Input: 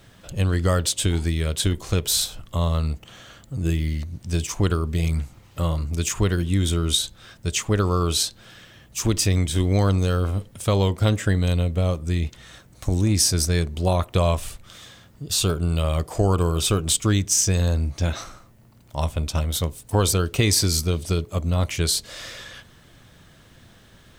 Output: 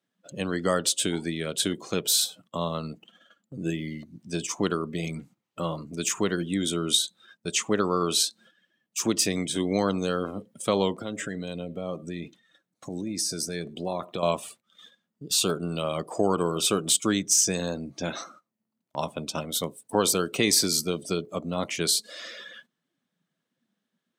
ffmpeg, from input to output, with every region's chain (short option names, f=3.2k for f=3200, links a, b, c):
-filter_complex "[0:a]asettb=1/sr,asplit=3[a][b][c];[a]atrim=end=11.014[d];[b]atrim=start=11.01:end=14.23,asetpts=PTS-STARTPTS,afade=t=in:d=0.004:c=qsin,afade=t=out:st=3.216:d=0.004:c=qsin,acompressor=threshold=-22dB:ratio=10:attack=3.2:release=140:knee=1:detection=peak,aecho=1:1:103:0.0944,atrim=end_sample=142002[e];[c]atrim=start=14.226[f];[d][e]acrossfade=d=0.004:c1=hsin:c2=qsin[g];[g][f]acrossfade=d=0.004:c1=qsin:c2=hsin,highpass=f=180:w=0.5412,highpass=f=180:w=1.3066,afftdn=nr=17:nf=-41,agate=range=-12dB:threshold=-50dB:ratio=16:detection=peak,volume=-1dB"